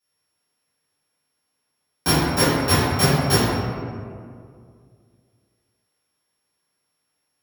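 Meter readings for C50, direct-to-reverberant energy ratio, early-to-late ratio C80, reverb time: -3.0 dB, -14.0 dB, -0.5 dB, 2.2 s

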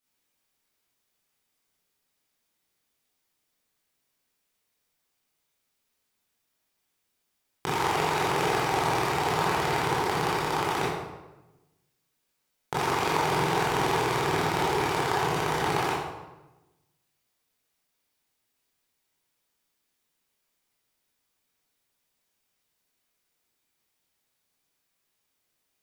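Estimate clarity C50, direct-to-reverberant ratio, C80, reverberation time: -0.5 dB, -8.5 dB, 3.0 dB, 1.0 s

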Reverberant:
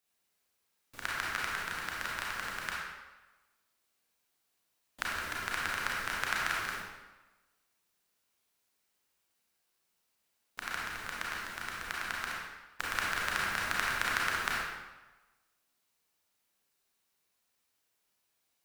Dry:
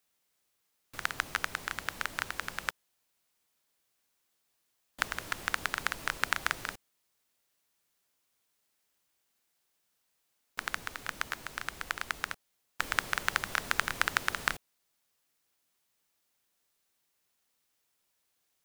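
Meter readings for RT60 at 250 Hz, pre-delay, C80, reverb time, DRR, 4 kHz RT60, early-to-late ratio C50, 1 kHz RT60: 1.1 s, 30 ms, 1.5 dB, 1.2 s, -4.5 dB, 0.90 s, -1.5 dB, 1.2 s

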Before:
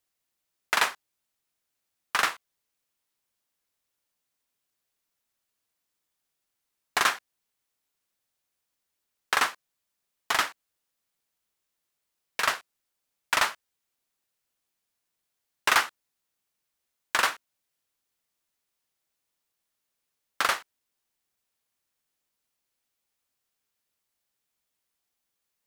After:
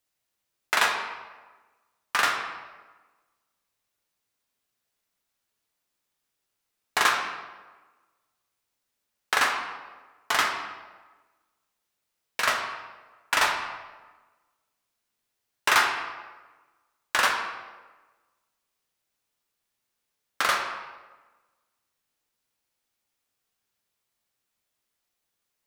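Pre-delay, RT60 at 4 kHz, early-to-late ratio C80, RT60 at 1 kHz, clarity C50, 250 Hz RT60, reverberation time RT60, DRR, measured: 7 ms, 0.85 s, 6.5 dB, 1.3 s, 5.0 dB, 1.3 s, 1.3 s, 1.0 dB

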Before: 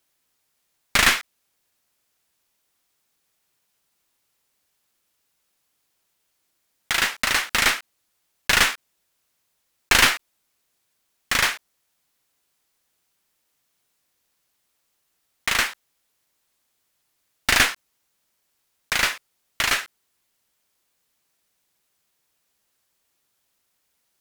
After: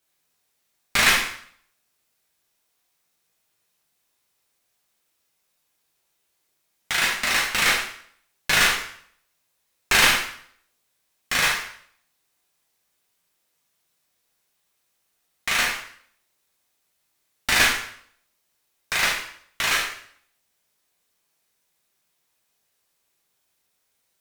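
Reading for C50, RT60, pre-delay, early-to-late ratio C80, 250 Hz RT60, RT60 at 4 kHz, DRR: 5.0 dB, 0.60 s, 5 ms, 8.5 dB, 0.55 s, 0.55 s, -3.0 dB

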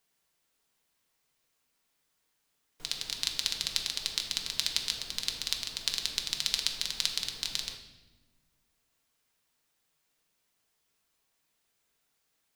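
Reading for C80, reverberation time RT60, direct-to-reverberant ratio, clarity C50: 10.0 dB, 1.2 s, 2.5 dB, 8.0 dB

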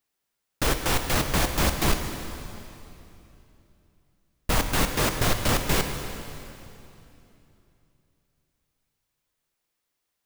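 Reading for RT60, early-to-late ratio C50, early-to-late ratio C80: 2.9 s, 6.5 dB, 7.0 dB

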